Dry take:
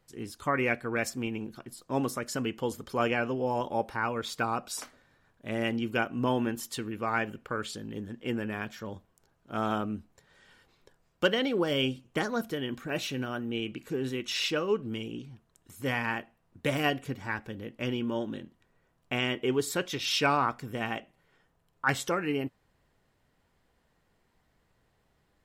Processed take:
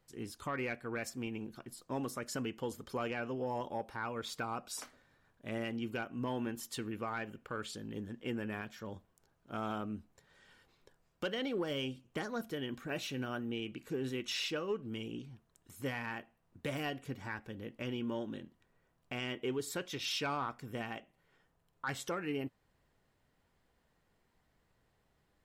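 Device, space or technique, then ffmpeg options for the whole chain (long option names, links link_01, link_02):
soft clipper into limiter: -af "asoftclip=type=tanh:threshold=-17dB,alimiter=limit=-24dB:level=0:latency=1:release=390,volume=-4dB"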